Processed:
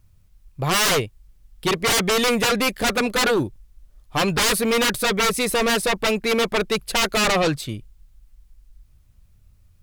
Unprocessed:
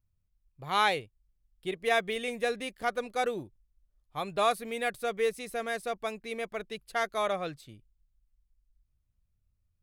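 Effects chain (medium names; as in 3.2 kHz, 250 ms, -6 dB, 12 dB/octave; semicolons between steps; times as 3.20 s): sine folder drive 19 dB, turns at -13.5 dBFS; trim -2 dB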